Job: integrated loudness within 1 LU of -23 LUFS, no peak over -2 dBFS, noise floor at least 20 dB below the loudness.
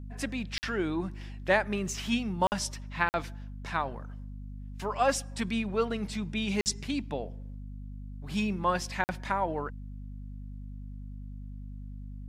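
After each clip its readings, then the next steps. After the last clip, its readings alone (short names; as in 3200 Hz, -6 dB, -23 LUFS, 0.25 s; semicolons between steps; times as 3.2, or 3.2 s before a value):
dropouts 5; longest dropout 49 ms; hum 50 Hz; harmonics up to 250 Hz; hum level -39 dBFS; loudness -31.5 LUFS; peak -10.5 dBFS; loudness target -23.0 LUFS
-> interpolate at 0.58/2.47/3.09/6.61/9.04, 49 ms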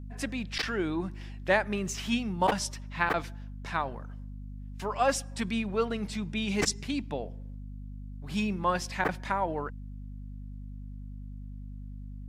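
dropouts 0; hum 50 Hz; harmonics up to 250 Hz; hum level -39 dBFS
-> de-hum 50 Hz, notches 5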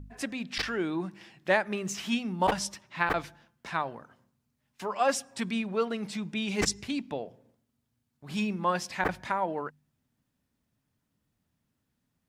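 hum none; loudness -31.0 LUFS; peak -10.5 dBFS; loudness target -23.0 LUFS
-> gain +8 dB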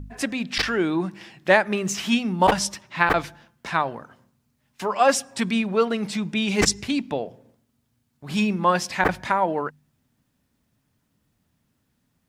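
loudness -23.0 LUFS; peak -2.5 dBFS; noise floor -72 dBFS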